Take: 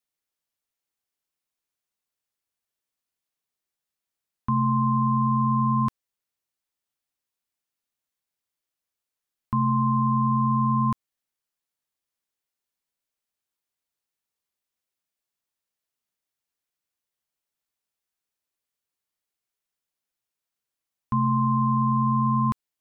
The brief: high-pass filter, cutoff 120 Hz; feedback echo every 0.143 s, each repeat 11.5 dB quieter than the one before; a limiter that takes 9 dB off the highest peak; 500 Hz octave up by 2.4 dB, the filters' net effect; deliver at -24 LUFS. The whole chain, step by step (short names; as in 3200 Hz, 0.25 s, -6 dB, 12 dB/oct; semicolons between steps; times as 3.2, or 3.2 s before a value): HPF 120 Hz; bell 500 Hz +4 dB; limiter -23.5 dBFS; feedback echo 0.143 s, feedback 27%, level -11.5 dB; gain +9 dB